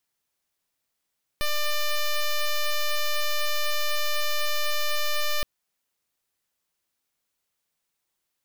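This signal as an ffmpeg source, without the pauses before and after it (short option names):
-f lavfi -i "aevalsrc='0.0668*(2*lt(mod(596*t,1),0.07)-1)':d=4.02:s=44100"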